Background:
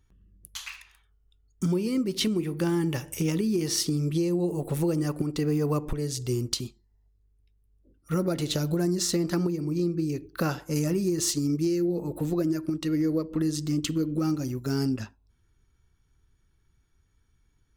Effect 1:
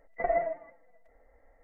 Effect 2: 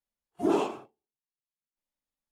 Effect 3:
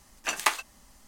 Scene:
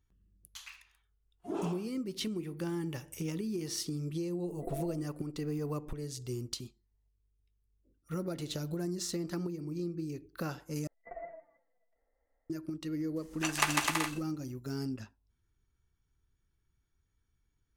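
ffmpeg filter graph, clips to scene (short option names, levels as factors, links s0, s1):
-filter_complex "[1:a]asplit=2[s0][s1];[0:a]volume=0.316[s2];[s0]lowpass=f=330:t=q:w=2.8[s3];[3:a]aecho=1:1:150|255|328.5|380|416:0.794|0.631|0.501|0.398|0.316[s4];[s2]asplit=2[s5][s6];[s5]atrim=end=10.874[s7];[s1]atrim=end=1.63,asetpts=PTS-STARTPTS,volume=0.141[s8];[s6]atrim=start=12.496[s9];[2:a]atrim=end=2.31,asetpts=PTS-STARTPTS,volume=0.266,afade=t=in:d=0.004:c=hsin,afade=t=out:st=2.306:d=0.004:c=hsin,adelay=1050[s10];[s3]atrim=end=1.63,asetpts=PTS-STARTPTS,volume=0.596,afade=t=in:d=0.004:c=hsin,afade=t=out:st=1.626:d=0.004:c=hsin,adelay=4430[s11];[s4]atrim=end=1.07,asetpts=PTS-STARTPTS,volume=0.562,afade=t=in:d=0.004:c=hsin,afade=t=out:st=1.066:d=0.004:c=hsin,adelay=580356S[s12];[s7][s8]acrossfade=d=0.004:c1=hsin:c2=hsin[s13];[s13][s9]acrossfade=d=0.004:c1=hsin:c2=hsin[s14];[s14][s10][s11][s12]amix=inputs=4:normalize=0"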